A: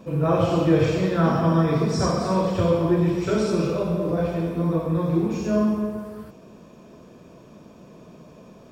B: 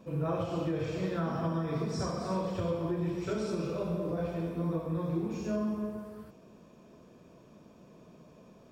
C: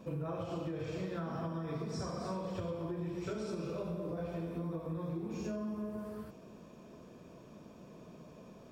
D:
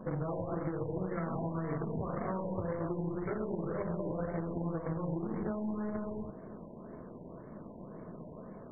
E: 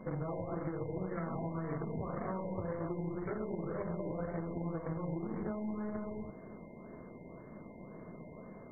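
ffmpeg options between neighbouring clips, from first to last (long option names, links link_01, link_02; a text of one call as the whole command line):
ffmpeg -i in.wav -af "alimiter=limit=-14dB:level=0:latency=1:release=303,volume=-9dB" out.wav
ffmpeg -i in.wav -af "acompressor=threshold=-38dB:ratio=6,volume=2dB" out.wav
ffmpeg -i in.wav -af "aeval=exprs='0.0422*(cos(1*acos(clip(val(0)/0.0422,-1,1)))-cos(1*PI/2))+0.0168*(cos(2*acos(clip(val(0)/0.0422,-1,1)))-cos(2*PI/2))+0.00473*(cos(8*acos(clip(val(0)/0.0422,-1,1)))-cos(8*PI/2))':channel_layout=same,acompressor=threshold=-40dB:ratio=2,afftfilt=real='re*lt(b*sr/1024,1000*pow(2300/1000,0.5+0.5*sin(2*PI*1.9*pts/sr)))':imag='im*lt(b*sr/1024,1000*pow(2300/1000,0.5+0.5*sin(2*PI*1.9*pts/sr)))':win_size=1024:overlap=0.75,volume=6dB" out.wav
ffmpeg -i in.wav -af "aeval=exprs='val(0)+0.000708*sin(2*PI*2100*n/s)':channel_layout=same,volume=-2.5dB" out.wav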